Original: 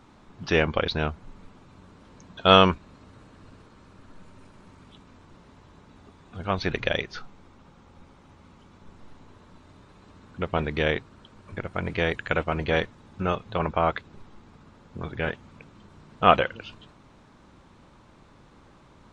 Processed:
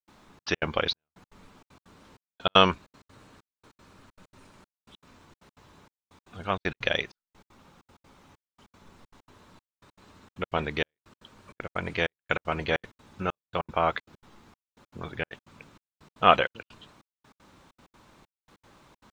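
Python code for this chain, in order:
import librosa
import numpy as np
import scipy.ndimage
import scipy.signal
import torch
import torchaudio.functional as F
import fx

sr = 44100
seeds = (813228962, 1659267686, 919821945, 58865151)

y = fx.tilt_eq(x, sr, slope=1.5)
y = fx.dmg_noise_colour(y, sr, seeds[0], colour='pink', level_db=-70.0)
y = fx.step_gate(y, sr, bpm=194, pattern='.xxxx.x.xxxx...x', floor_db=-60.0, edge_ms=4.5)
y = y * librosa.db_to_amplitude(-1.0)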